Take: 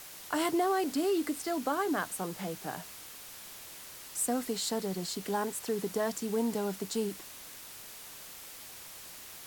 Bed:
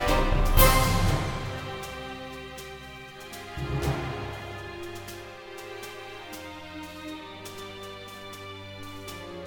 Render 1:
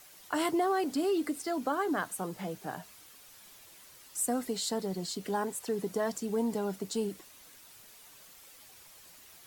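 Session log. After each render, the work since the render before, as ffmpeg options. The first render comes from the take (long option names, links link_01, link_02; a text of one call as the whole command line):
ffmpeg -i in.wav -af "afftdn=noise_reduction=9:noise_floor=-48" out.wav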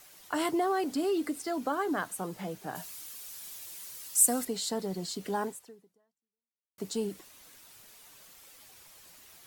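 ffmpeg -i in.wav -filter_complex "[0:a]asettb=1/sr,asplit=3[link_01][link_02][link_03];[link_01]atrim=end=2.754[link_04];[link_02]atrim=start=2.75:end=4.45,asetpts=PTS-STARTPTS,afade=type=in:duration=0.004:curve=qsin,afade=type=out:start_time=1.696:duration=0.004:curve=qsin,highshelf=frequency=3700:gain=12[link_05];[link_03]atrim=start=4.446[link_06];[link_04][link_05]acrossfade=duration=0.004:curve1=hsin:curve2=qsin[link_07];[link_07][link_06]acrossfade=duration=0.004:curve1=qsin:curve2=hsin,asplit=2[link_08][link_09];[link_08]atrim=end=6.78,asetpts=PTS-STARTPTS,afade=type=out:start_time=5.47:duration=1.31:curve=exp[link_10];[link_09]atrim=start=6.78,asetpts=PTS-STARTPTS,afade=type=in:duration=0.004:curve=hsin[link_11];[link_10][link_11]concat=n=2:v=0:a=1" out.wav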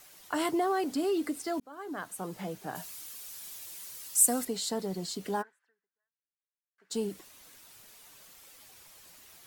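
ffmpeg -i in.wav -filter_complex "[0:a]asplit=3[link_01][link_02][link_03];[link_01]afade=type=out:start_time=5.41:duration=0.02[link_04];[link_02]bandpass=frequency=1600:width_type=q:width=7.1,afade=type=in:start_time=5.41:duration=0.02,afade=type=out:start_time=6.9:duration=0.02[link_05];[link_03]afade=type=in:start_time=6.9:duration=0.02[link_06];[link_04][link_05][link_06]amix=inputs=3:normalize=0,asplit=2[link_07][link_08];[link_07]atrim=end=1.6,asetpts=PTS-STARTPTS,afade=type=out:start_time=1.596:duration=0.004:curve=hsin[link_09];[link_08]atrim=start=1.6,asetpts=PTS-STARTPTS,afade=type=in:duration=0.77[link_10];[link_09][link_10]concat=n=2:v=0:a=1" out.wav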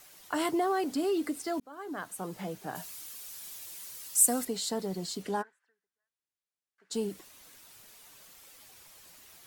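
ffmpeg -i in.wav -filter_complex "[0:a]asettb=1/sr,asplit=3[link_01][link_02][link_03];[link_01]atrim=end=5.234[link_04];[link_02]atrim=start=5.23:end=6.93,asetpts=PTS-STARTPTS,afade=type=in:duration=0.004:curve=qsin,afade=type=out:start_time=1.696:duration=0.004:curve=qsin,lowpass=11000[link_05];[link_03]atrim=start=6.926[link_06];[link_04][link_05]acrossfade=duration=0.004:curve1=hsin:curve2=qsin[link_07];[link_07][link_06]acrossfade=duration=0.004:curve1=qsin:curve2=hsin" out.wav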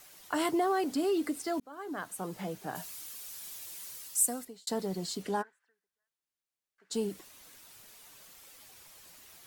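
ffmpeg -i in.wav -filter_complex "[0:a]asplit=2[link_01][link_02];[link_01]atrim=end=4.67,asetpts=PTS-STARTPTS,afade=type=out:start_time=3.92:duration=0.75[link_03];[link_02]atrim=start=4.67,asetpts=PTS-STARTPTS,afade=type=in:duration=0.004:curve=hsin[link_04];[link_03][link_04]concat=n=2:v=0:a=1" out.wav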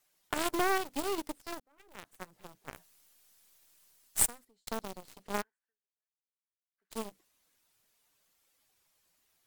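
ffmpeg -i in.wav -af "acrusher=bits=4:mode=log:mix=0:aa=0.000001,aeval=exprs='0.2*(cos(1*acos(clip(val(0)/0.2,-1,1)))-cos(1*PI/2))+0.0708*(cos(2*acos(clip(val(0)/0.2,-1,1)))-cos(2*PI/2))+0.0316*(cos(7*acos(clip(val(0)/0.2,-1,1)))-cos(7*PI/2))':channel_layout=same" out.wav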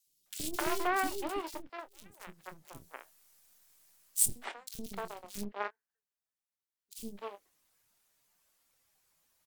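ffmpeg -i in.wav -filter_complex "[0:a]asplit=2[link_01][link_02];[link_02]adelay=25,volume=-12dB[link_03];[link_01][link_03]amix=inputs=2:normalize=0,acrossover=split=370|3300[link_04][link_05][link_06];[link_04]adelay=70[link_07];[link_05]adelay=260[link_08];[link_07][link_08][link_06]amix=inputs=3:normalize=0" out.wav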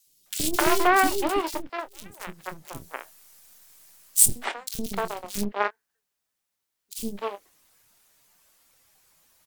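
ffmpeg -i in.wav -af "volume=11.5dB,alimiter=limit=-2dB:level=0:latency=1" out.wav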